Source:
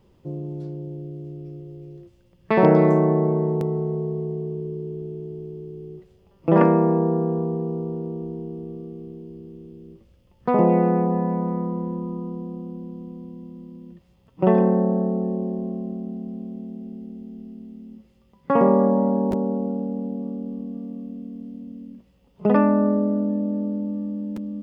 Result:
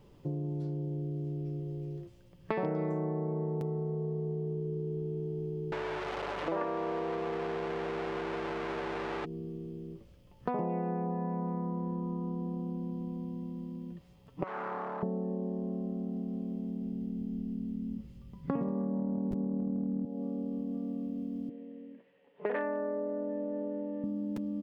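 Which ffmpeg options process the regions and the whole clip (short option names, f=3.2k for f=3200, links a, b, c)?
-filter_complex "[0:a]asettb=1/sr,asplit=3[a][b][c];[a]atrim=end=5.724[d];[b]atrim=start=5.72:end=9.25,asetpts=PTS-STARTPTS,afade=t=in:d=0.004:c=qsin,afade=t=out:st=3.526:d=0.004:c=qsin,aeval=exprs='val(0)+0.5*0.0794*sgn(val(0))':c=same,highpass=480,lowpass=2.5k,aeval=exprs='val(0)+0.00447*(sin(2*PI*50*n/s)+sin(2*PI*2*50*n/s)/2+sin(2*PI*3*50*n/s)/3+sin(2*PI*4*50*n/s)/4+sin(2*PI*5*50*n/s)/5)':c=same[e];[c]atrim=start=9.246[f];[d][e]acrossfade=d=0.004:c1=hsin:c2=qsin[g];[g][f]acrossfade=d=0.004:c1=qsin:c2=hsin,asettb=1/sr,asplit=3[h][i][j];[h]atrim=end=14.434[k];[i]atrim=start=14.43:end=15.03,asetpts=PTS-STARTPTS,afade=t=in:d=0.004:c=qsin,afade=t=out:st=0.596:d=0.004:c=qsin,volume=21.5dB,asoftclip=hard,volume=-21.5dB,bandpass=f=1.2k:t=q:w=1.8[l];[j]atrim=start=15.026[m];[k][l]acrossfade=d=0.004:c1=hsin:c2=qsin[n];[n][m]acrossfade=d=0.004:c1=qsin:c2=hsin,asettb=1/sr,asplit=3[o][p][q];[o]atrim=end=16.454[r];[p]atrim=start=16.45:end=20.05,asetpts=PTS-STARTPTS,afade=t=in:d=0.004:c=qsin,afade=t=out:st=3.596:d=0.004:c=qsin,asubboost=boost=9:cutoff=240,acompressor=threshold=-13dB:ratio=6:attack=3.2:release=140:knee=1:detection=peak[s];[q]atrim=start=20.046[t];[r][s]acrossfade=d=0.004:c1=hsin:c2=qsin[u];[u][t]acrossfade=d=0.004:c1=qsin:c2=hsin,asettb=1/sr,asplit=3[v][w][x];[v]atrim=end=21.494[y];[w]atrim=start=21.49:end=24.04,asetpts=PTS-STARTPTS,afade=t=in:d=0.004:c=qsin,afade=t=out:st=2.546:d=0.004:c=qsin,aeval=exprs='0.299*(abs(mod(val(0)/0.299+3,4)-2)-1)':c=same,highpass=420,equalizer=f=470:t=q:w=4:g=6,equalizer=f=770:t=q:w=4:g=-3,equalizer=f=1.2k:t=q:w=4:g=-6,equalizer=f=1.8k:t=q:w=4:g=9,lowpass=f=2.9k:w=0.5412,lowpass=f=2.9k:w=1.3066[z];[x]atrim=start=24.036[aa];[y][z]acrossfade=d=0.004:c1=hsin:c2=qsin[ab];[ab][aa]acrossfade=d=0.004:c1=qsin:c2=hsin,aecho=1:1:6.9:0.33,acompressor=threshold=-32dB:ratio=5"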